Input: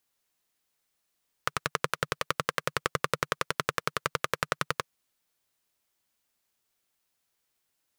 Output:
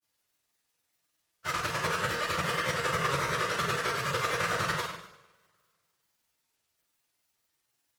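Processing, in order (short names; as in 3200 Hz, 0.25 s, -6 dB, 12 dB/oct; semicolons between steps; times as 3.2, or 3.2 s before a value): phase scrambler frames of 50 ms; two-slope reverb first 0.71 s, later 2 s, from -23 dB, DRR -4.5 dB; grains 0.1 s, spray 15 ms, pitch spread up and down by 0 st; gain -2.5 dB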